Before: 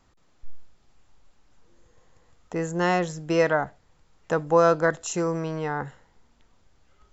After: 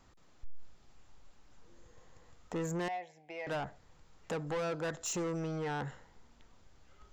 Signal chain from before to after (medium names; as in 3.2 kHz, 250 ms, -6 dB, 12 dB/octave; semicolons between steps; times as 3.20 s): compression 2.5:1, threshold -28 dBFS, peak gain reduction 10 dB; 2.88–3.47 s: two resonant band-passes 1.3 kHz, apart 1.5 oct; saturation -32 dBFS, distortion -8 dB